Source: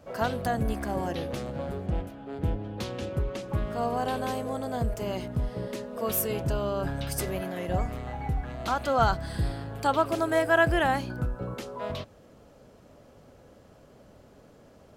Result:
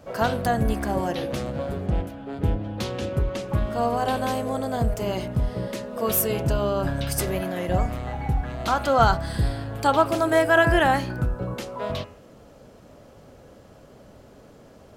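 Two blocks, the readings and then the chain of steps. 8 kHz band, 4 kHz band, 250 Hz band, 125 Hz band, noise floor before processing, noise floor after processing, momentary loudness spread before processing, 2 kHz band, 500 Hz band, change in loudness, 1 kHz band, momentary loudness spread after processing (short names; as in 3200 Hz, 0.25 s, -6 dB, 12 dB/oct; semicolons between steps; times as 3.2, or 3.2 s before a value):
+5.5 dB, +5.5 dB, +5.0 dB, +5.0 dB, -55 dBFS, -50 dBFS, 11 LU, +4.5 dB, +5.0 dB, +5.0 dB, +5.0 dB, 11 LU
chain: de-hum 83.09 Hz, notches 35; gain +5.5 dB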